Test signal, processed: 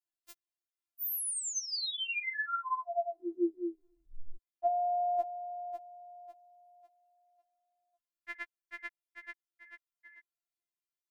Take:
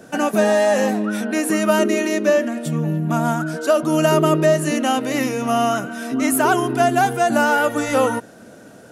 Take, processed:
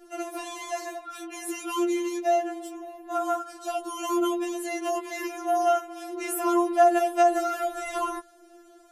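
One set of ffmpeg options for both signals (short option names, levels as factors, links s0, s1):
-af "tremolo=f=98:d=0.947,afftfilt=real='re*4*eq(mod(b,16),0)':imag='im*4*eq(mod(b,16),0)':win_size=2048:overlap=0.75,volume=0.668"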